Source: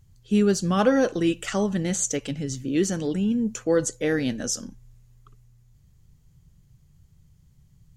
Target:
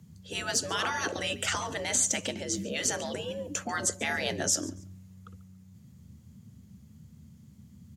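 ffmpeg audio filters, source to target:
ffmpeg -i in.wav -af "afreqshift=67,afftfilt=real='re*lt(hypot(re,im),0.178)':imag='im*lt(hypot(re,im),0.178)':win_size=1024:overlap=0.75,aecho=1:1:141|282:0.1|0.023,volume=3.5dB" out.wav

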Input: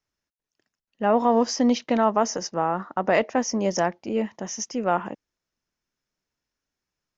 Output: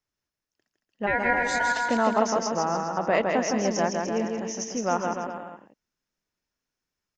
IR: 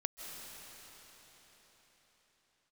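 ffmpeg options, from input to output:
-filter_complex "[0:a]asplit=3[link_01][link_02][link_03];[link_01]afade=type=out:start_time=1.06:duration=0.02[link_04];[link_02]aeval=exprs='val(0)*sin(2*PI*1200*n/s)':channel_layout=same,afade=type=in:start_time=1.06:duration=0.02,afade=type=out:start_time=1.77:duration=0.02[link_05];[link_03]afade=type=in:start_time=1.77:duration=0.02[link_06];[link_04][link_05][link_06]amix=inputs=3:normalize=0,aecho=1:1:160|296|411.6|509.9|593.4:0.631|0.398|0.251|0.158|0.1,volume=-3dB"

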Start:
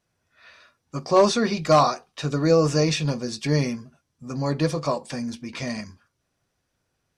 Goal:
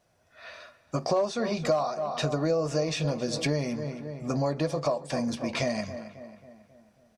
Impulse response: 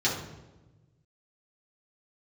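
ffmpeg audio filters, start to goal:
-filter_complex "[0:a]equalizer=frequency=650:width=2.3:gain=10.5,asplit=2[link_01][link_02];[link_02]adelay=271,lowpass=frequency=2900:poles=1,volume=-17dB,asplit=2[link_03][link_04];[link_04]adelay=271,lowpass=frequency=2900:poles=1,volume=0.52,asplit=2[link_05][link_06];[link_06]adelay=271,lowpass=frequency=2900:poles=1,volume=0.52,asplit=2[link_07][link_08];[link_08]adelay=271,lowpass=frequency=2900:poles=1,volume=0.52,asplit=2[link_09][link_10];[link_10]adelay=271,lowpass=frequency=2900:poles=1,volume=0.52[link_11];[link_03][link_05][link_07][link_09][link_11]amix=inputs=5:normalize=0[link_12];[link_01][link_12]amix=inputs=2:normalize=0,acompressor=threshold=-29dB:ratio=6,volume=4dB"

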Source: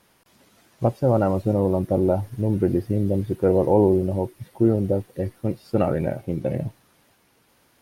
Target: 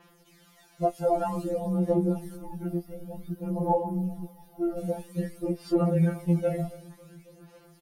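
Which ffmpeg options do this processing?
ffmpeg -i in.wav -filter_complex "[0:a]asettb=1/sr,asplit=3[link_01][link_02][link_03];[link_01]atrim=end=2.364[link_04];[link_02]atrim=start=2.36:end=4.78,asetpts=PTS-STARTPTS,afade=type=in:duration=0.004:curve=qsin,afade=type=out:start_time=2.416:duration=0.004:curve=qsin,equalizer=frequency=250:width_type=o:width=1:gain=-11,equalizer=frequency=500:width_type=o:width=1:gain=-9,equalizer=frequency=2000:width_type=o:width=1:gain=-11,equalizer=frequency=4000:width_type=o:width=1:gain=-6,equalizer=frequency=8000:width_type=o:width=1:gain=-12[link_05];[link_03]atrim=start=4.776[link_06];[link_04][link_05]acrossfade=duration=0.004:curve1=hsin:curve2=qsin[link_07];[link_07][link_06]acrossfade=duration=0.004:curve1=qsin:curve2=hsin,asplit=2[link_08][link_09];[link_09]adelay=274,lowpass=frequency=2000:poles=1,volume=-19.5dB,asplit=2[link_10][link_11];[link_11]adelay=274,lowpass=frequency=2000:poles=1,volume=0.52,asplit=2[link_12][link_13];[link_13]adelay=274,lowpass=frequency=2000:poles=1,volume=0.52,asplit=2[link_14][link_15];[link_15]adelay=274,lowpass=frequency=2000:poles=1,volume=0.52[link_16];[link_08][link_10][link_12][link_14][link_16]amix=inputs=5:normalize=0,adynamicequalizer=threshold=0.00112:dfrequency=8900:dqfactor=1:tfrequency=8900:tqfactor=1:attack=5:release=100:ratio=0.375:range=3.5:mode=boostabove:tftype=bell,aphaser=in_gain=1:out_gain=1:delay=1.5:decay=0.57:speed=0.53:type=sinusoidal,acompressor=threshold=-18dB:ratio=4,afftfilt=real='re*2.83*eq(mod(b,8),0)':imag='im*2.83*eq(mod(b,8),0)':win_size=2048:overlap=0.75" out.wav

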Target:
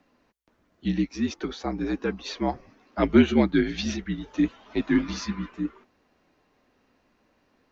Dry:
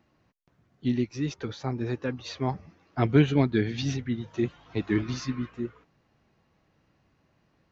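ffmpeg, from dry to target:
ffmpeg -i in.wav -af "afreqshift=-58,lowshelf=frequency=180:width_type=q:width=1.5:gain=-9.5,volume=3.5dB" out.wav

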